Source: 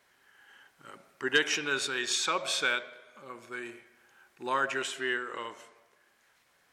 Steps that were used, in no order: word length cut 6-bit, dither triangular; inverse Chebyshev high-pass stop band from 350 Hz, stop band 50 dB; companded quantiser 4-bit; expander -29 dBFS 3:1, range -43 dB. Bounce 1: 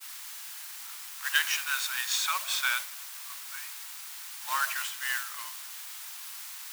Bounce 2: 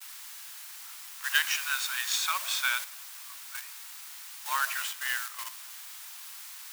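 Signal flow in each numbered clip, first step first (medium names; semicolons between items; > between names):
companded quantiser > word length cut > expander > inverse Chebyshev high-pass; word length cut > expander > companded quantiser > inverse Chebyshev high-pass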